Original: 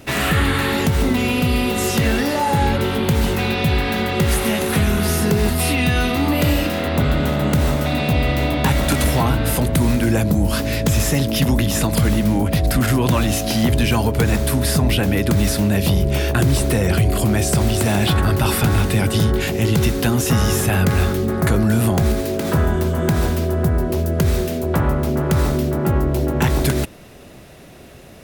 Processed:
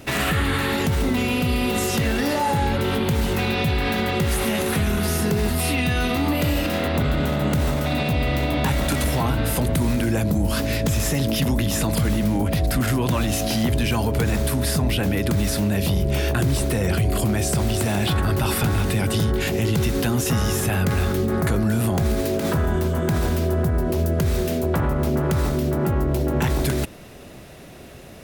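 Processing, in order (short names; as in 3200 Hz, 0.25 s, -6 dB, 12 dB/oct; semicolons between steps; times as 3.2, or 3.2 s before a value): limiter -13.5 dBFS, peak gain reduction 5.5 dB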